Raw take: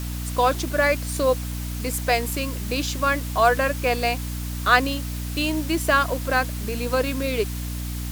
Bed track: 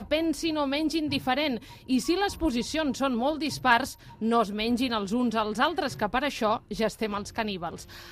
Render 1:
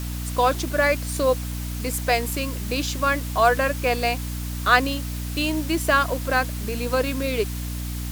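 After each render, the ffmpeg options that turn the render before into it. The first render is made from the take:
ffmpeg -i in.wav -af anull out.wav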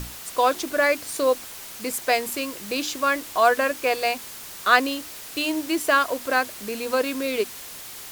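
ffmpeg -i in.wav -af "bandreject=frequency=60:width_type=h:width=6,bandreject=frequency=120:width_type=h:width=6,bandreject=frequency=180:width_type=h:width=6,bandreject=frequency=240:width_type=h:width=6,bandreject=frequency=300:width_type=h:width=6" out.wav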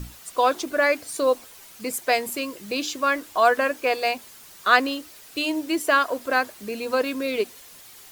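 ffmpeg -i in.wav -af "afftdn=noise_reduction=9:noise_floor=-39" out.wav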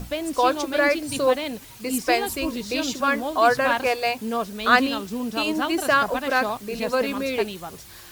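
ffmpeg -i in.wav -i bed.wav -filter_complex "[1:a]volume=-2.5dB[link_01];[0:a][link_01]amix=inputs=2:normalize=0" out.wav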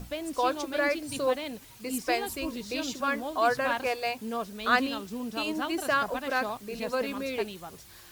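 ffmpeg -i in.wav -af "volume=-7dB" out.wav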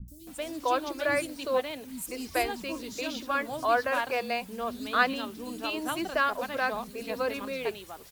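ffmpeg -i in.wav -filter_complex "[0:a]acrossover=split=240|5800[link_01][link_02][link_03];[link_03]adelay=80[link_04];[link_02]adelay=270[link_05];[link_01][link_05][link_04]amix=inputs=3:normalize=0" out.wav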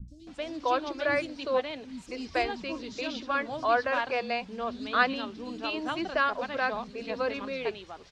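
ffmpeg -i in.wav -af "lowpass=frequency=5400:width=0.5412,lowpass=frequency=5400:width=1.3066" out.wav

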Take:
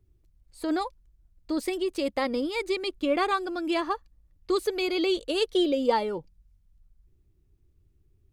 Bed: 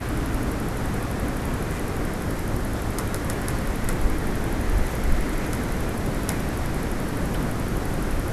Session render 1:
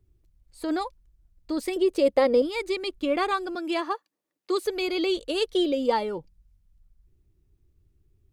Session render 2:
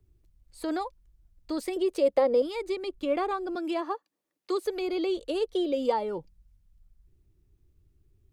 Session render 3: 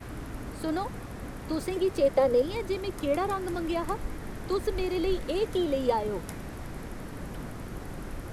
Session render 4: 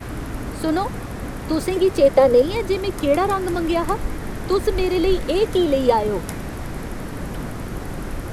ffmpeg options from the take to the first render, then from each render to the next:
ffmpeg -i in.wav -filter_complex "[0:a]asettb=1/sr,asplit=3[link_01][link_02][link_03];[link_01]atrim=end=1.764[link_04];[link_02]atrim=start=1.76:end=2.42,asetpts=PTS-STARTPTS,afade=type=in:duration=0.004:curve=qsin,afade=type=out:start_time=0.656:duration=0.004:curve=qsin,equalizer=frequency=490:width=1.6:gain=11[link_05];[link_03]atrim=start=2.416[link_06];[link_04][link_05]acrossfade=duration=0.004:curve1=hsin:curve2=qsin[link_07];[link_07][link_06]acrossfade=duration=0.004:curve1=qsin:curve2=hsin,asettb=1/sr,asplit=3[link_08][link_09][link_10];[link_08]atrim=end=3.554[link_11];[link_09]atrim=start=3.55:end=4.65,asetpts=PTS-STARTPTS,afade=type=in:duration=0.004:curve=qsin,afade=type=out:start_time=1.096:duration=0.004:curve=qsin,highpass=frequency=290:width=0.5412,highpass=frequency=290:width=1.3066[link_12];[link_10]atrim=start=4.646[link_13];[link_11][link_12]acrossfade=duration=0.004:curve1=hsin:curve2=qsin[link_14];[link_14][link_13]acrossfade=duration=0.004:curve1=qsin:curve2=hsin" out.wav
ffmpeg -i in.wav -filter_complex "[0:a]acrossover=split=420|1000[link_01][link_02][link_03];[link_01]alimiter=level_in=5.5dB:limit=-24dB:level=0:latency=1:release=391,volume=-5.5dB[link_04];[link_03]acompressor=threshold=-41dB:ratio=6[link_05];[link_04][link_02][link_05]amix=inputs=3:normalize=0" out.wav
ffmpeg -i in.wav -i bed.wav -filter_complex "[1:a]volume=-13dB[link_01];[0:a][link_01]amix=inputs=2:normalize=0" out.wav
ffmpeg -i in.wav -af "volume=9.5dB" out.wav

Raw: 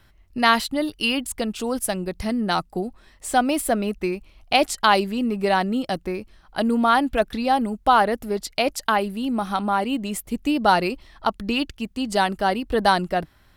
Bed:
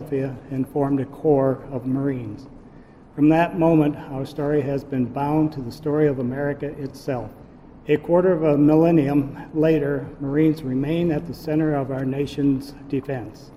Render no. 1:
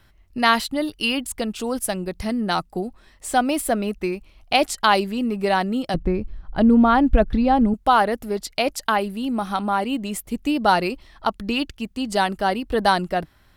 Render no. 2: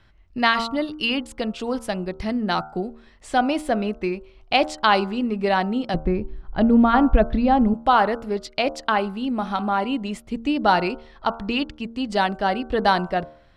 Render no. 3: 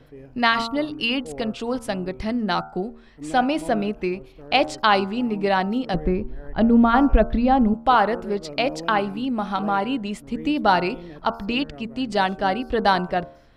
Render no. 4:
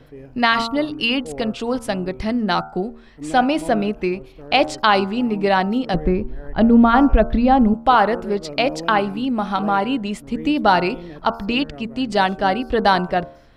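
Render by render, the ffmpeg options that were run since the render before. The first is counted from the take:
ffmpeg -i in.wav -filter_complex "[0:a]asettb=1/sr,asplit=3[link_01][link_02][link_03];[link_01]atrim=end=5.944[link_04];[link_02]atrim=start=5.94:end=7.74,asetpts=PTS-STARTPTS,afade=type=in:duration=0.004:curve=qsin,afade=type=out:start_time=1.796:duration=0.004:curve=qsin,aemphasis=mode=reproduction:type=riaa[link_05];[link_03]atrim=start=7.736[link_06];[link_04][link_05]acrossfade=duration=0.004:curve1=hsin:curve2=qsin[link_07];[link_07][link_06]acrossfade=duration=0.004:curve1=qsin:curve2=hsin" out.wav
ffmpeg -i in.wav -af "lowpass=4600,bandreject=frequency=76.46:width_type=h:width=4,bandreject=frequency=152.92:width_type=h:width=4,bandreject=frequency=229.38:width_type=h:width=4,bandreject=frequency=305.84:width_type=h:width=4,bandreject=frequency=382.3:width_type=h:width=4,bandreject=frequency=458.76:width_type=h:width=4,bandreject=frequency=535.22:width_type=h:width=4,bandreject=frequency=611.68:width_type=h:width=4,bandreject=frequency=688.14:width_type=h:width=4,bandreject=frequency=764.6:width_type=h:width=4,bandreject=frequency=841.06:width_type=h:width=4,bandreject=frequency=917.52:width_type=h:width=4,bandreject=frequency=993.98:width_type=h:width=4,bandreject=frequency=1070.44:width_type=h:width=4,bandreject=frequency=1146.9:width_type=h:width=4,bandreject=frequency=1223.36:width_type=h:width=4,bandreject=frequency=1299.82:width_type=h:width=4,bandreject=frequency=1376.28:width_type=h:width=4,bandreject=frequency=1452.74:width_type=h:width=4,bandreject=frequency=1529.2:width_type=h:width=4" out.wav
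ffmpeg -i in.wav -i bed.wav -filter_complex "[1:a]volume=-19dB[link_01];[0:a][link_01]amix=inputs=2:normalize=0" out.wav
ffmpeg -i in.wav -af "volume=3.5dB,alimiter=limit=-3dB:level=0:latency=1" out.wav

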